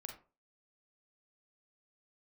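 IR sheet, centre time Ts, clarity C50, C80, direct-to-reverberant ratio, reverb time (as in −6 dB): 20 ms, 7.0 dB, 13.0 dB, 2.5 dB, 0.35 s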